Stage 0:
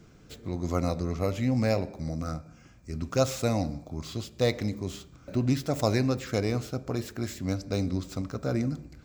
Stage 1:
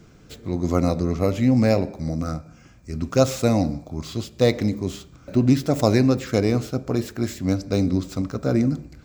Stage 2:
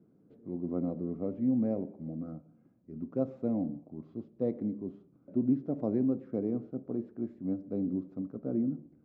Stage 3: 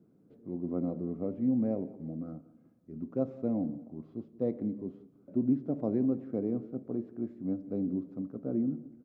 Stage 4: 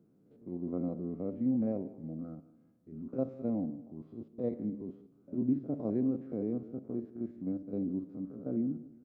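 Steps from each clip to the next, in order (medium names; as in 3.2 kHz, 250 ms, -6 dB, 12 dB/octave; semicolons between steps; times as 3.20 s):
dynamic bell 270 Hz, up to +5 dB, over -35 dBFS, Q 0.7; trim +4.5 dB
ladder band-pass 290 Hz, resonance 25%
feedback delay 179 ms, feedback 41%, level -20 dB
spectrogram pixelated in time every 50 ms; trim -1.5 dB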